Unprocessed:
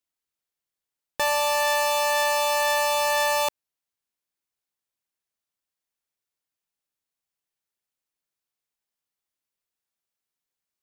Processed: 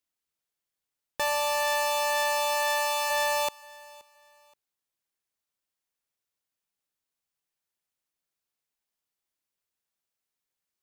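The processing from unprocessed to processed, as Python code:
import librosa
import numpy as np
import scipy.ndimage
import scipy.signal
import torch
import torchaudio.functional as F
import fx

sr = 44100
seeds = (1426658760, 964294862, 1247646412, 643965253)

y = fx.self_delay(x, sr, depth_ms=0.25)
y = fx.highpass(y, sr, hz=fx.line((2.54, 270.0), (3.09, 740.0)), slope=12, at=(2.54, 3.09), fade=0.02)
y = fx.echo_feedback(y, sr, ms=525, feedback_pct=33, wet_db=-23)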